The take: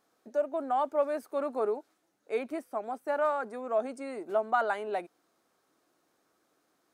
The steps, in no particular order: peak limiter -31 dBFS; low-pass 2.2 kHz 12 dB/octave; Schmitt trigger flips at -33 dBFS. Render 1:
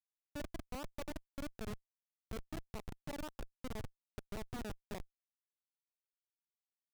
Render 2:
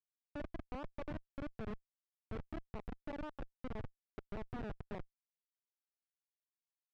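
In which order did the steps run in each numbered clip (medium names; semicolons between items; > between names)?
peak limiter > low-pass > Schmitt trigger; peak limiter > Schmitt trigger > low-pass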